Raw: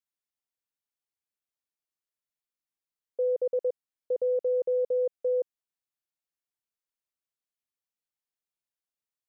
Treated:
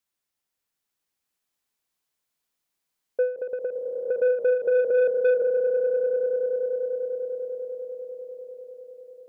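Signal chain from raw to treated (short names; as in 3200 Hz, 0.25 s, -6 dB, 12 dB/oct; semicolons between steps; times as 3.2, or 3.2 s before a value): swelling echo 99 ms, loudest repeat 8, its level -11 dB; soft clip -24 dBFS, distortion -16 dB; ending taper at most 120 dB/s; gain +8.5 dB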